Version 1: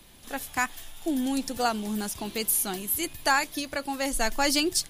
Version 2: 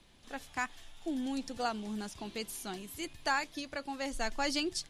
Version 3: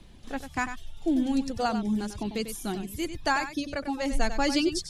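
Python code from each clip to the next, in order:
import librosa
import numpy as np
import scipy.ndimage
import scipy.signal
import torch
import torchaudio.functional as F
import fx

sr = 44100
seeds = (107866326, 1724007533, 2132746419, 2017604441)

y1 = scipy.signal.sosfilt(scipy.signal.butter(2, 6400.0, 'lowpass', fs=sr, output='sos'), x)
y1 = y1 * librosa.db_to_amplitude(-8.0)
y2 = fx.dereverb_blind(y1, sr, rt60_s=0.74)
y2 = fx.low_shelf(y2, sr, hz=380.0, db=11.5)
y2 = y2 + 10.0 ** (-10.0 / 20.0) * np.pad(y2, (int(96 * sr / 1000.0), 0))[:len(y2)]
y2 = y2 * librosa.db_to_amplitude(4.0)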